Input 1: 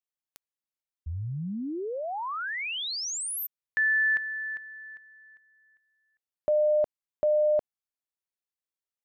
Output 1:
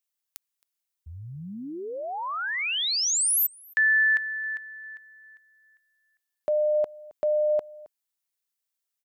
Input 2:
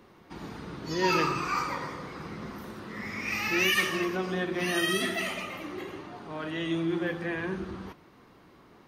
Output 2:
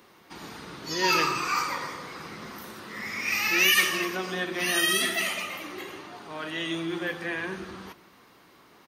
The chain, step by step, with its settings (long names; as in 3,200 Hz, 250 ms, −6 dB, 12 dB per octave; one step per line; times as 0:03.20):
spectral tilt +2.5 dB per octave
slap from a distant wall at 46 metres, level −21 dB
level +1.5 dB